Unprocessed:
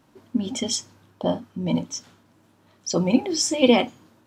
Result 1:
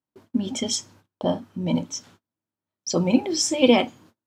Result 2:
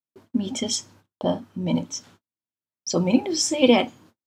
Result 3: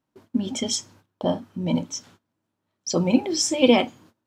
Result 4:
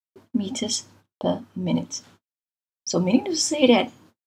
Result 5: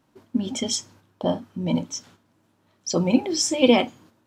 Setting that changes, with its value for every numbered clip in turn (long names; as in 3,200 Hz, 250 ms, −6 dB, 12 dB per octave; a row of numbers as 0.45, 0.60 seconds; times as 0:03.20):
noise gate, range: −32, −45, −20, −60, −6 decibels